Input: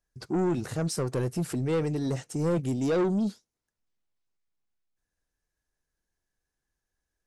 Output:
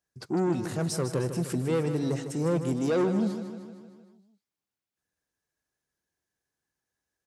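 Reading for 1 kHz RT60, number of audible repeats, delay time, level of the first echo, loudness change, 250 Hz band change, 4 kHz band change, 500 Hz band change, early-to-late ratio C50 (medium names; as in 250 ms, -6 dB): no reverb, 6, 154 ms, -10.0 dB, 0.0 dB, +0.5 dB, +0.5 dB, +0.5 dB, no reverb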